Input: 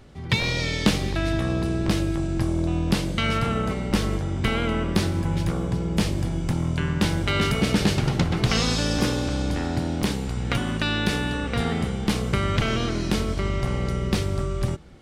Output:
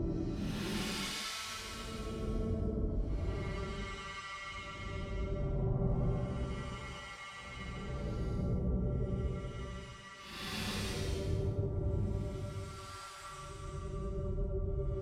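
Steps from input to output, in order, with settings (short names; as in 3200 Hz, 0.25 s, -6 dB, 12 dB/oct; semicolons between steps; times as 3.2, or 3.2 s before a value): harmonic tremolo 3.3 Hz, depth 100%, crossover 910 Hz; Paulstretch 9.7×, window 0.10 s, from 13.04; gain -8 dB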